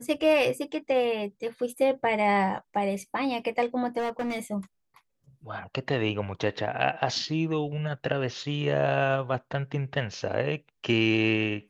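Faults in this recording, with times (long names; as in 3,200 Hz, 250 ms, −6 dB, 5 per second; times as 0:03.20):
0:03.98–0:04.39: clipping −26 dBFS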